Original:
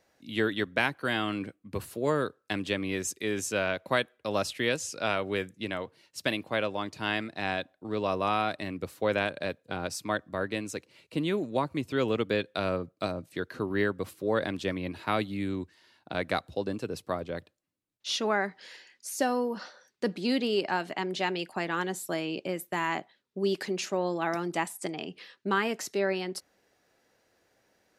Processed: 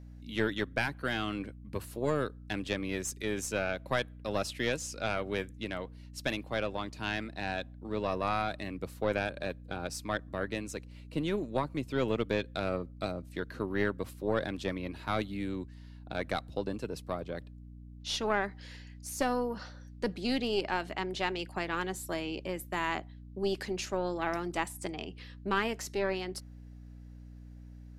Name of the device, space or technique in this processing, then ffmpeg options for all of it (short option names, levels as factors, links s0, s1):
valve amplifier with mains hum: -af "aeval=exprs='(tanh(5.62*val(0)+0.65)-tanh(0.65))/5.62':c=same,aeval=exprs='val(0)+0.00447*(sin(2*PI*60*n/s)+sin(2*PI*2*60*n/s)/2+sin(2*PI*3*60*n/s)/3+sin(2*PI*4*60*n/s)/4+sin(2*PI*5*60*n/s)/5)':c=same"